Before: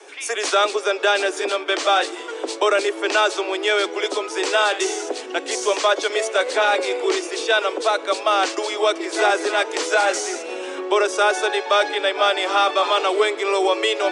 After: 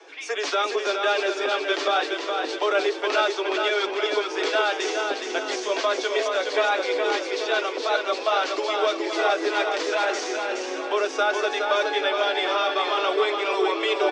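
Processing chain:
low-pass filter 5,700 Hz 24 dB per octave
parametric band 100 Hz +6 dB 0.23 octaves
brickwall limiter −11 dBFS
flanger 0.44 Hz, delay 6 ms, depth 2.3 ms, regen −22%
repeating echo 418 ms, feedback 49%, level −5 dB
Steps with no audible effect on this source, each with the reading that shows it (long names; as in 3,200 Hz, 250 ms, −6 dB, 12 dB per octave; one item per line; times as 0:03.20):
parametric band 100 Hz: nothing at its input below 240 Hz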